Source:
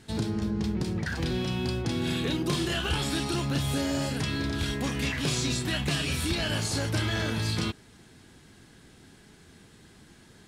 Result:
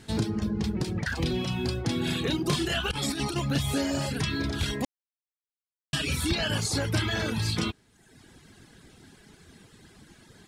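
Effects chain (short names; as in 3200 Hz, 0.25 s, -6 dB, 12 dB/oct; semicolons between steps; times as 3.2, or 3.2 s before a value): reverb removal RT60 0.92 s; 2.91–3.36 negative-ratio compressor -33 dBFS, ratio -0.5; 4.85–5.93 mute; gain +3 dB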